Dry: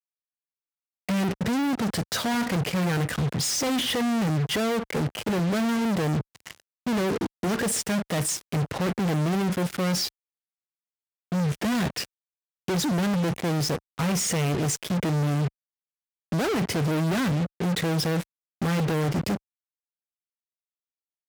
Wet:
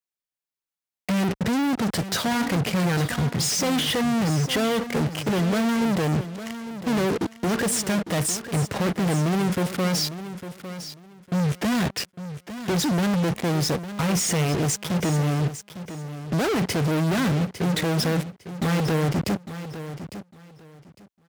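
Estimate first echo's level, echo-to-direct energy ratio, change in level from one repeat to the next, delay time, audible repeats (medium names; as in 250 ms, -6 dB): -12.0 dB, -12.0 dB, -13.5 dB, 854 ms, 2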